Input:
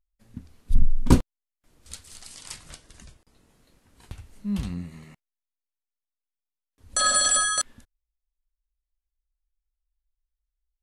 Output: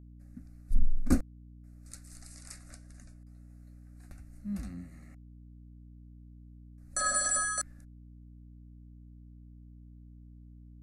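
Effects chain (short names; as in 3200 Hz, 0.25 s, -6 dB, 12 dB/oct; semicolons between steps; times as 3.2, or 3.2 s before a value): fixed phaser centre 640 Hz, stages 8; hum 60 Hz, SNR 18 dB; gain -6 dB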